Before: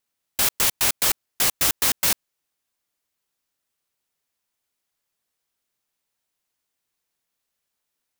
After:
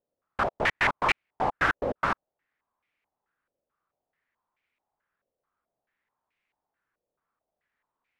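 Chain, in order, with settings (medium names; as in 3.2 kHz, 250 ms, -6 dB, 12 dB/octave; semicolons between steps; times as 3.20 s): step-sequenced low-pass 4.6 Hz 560–2300 Hz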